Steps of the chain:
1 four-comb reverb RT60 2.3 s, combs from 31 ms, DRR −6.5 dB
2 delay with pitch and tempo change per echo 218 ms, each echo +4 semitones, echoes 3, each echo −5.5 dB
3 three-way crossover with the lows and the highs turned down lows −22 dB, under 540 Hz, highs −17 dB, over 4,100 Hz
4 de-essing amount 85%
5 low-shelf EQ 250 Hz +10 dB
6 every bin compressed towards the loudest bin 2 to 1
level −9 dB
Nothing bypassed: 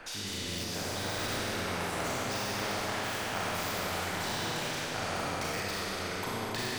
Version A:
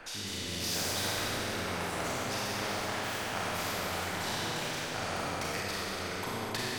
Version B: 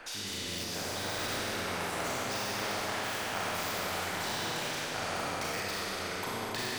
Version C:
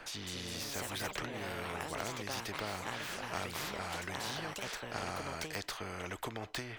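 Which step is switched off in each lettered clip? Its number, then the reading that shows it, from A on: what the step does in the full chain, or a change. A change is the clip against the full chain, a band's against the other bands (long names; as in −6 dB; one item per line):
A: 4, change in momentary loudness spread +2 LU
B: 5, 125 Hz band −4.0 dB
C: 1, change in momentary loudness spread +1 LU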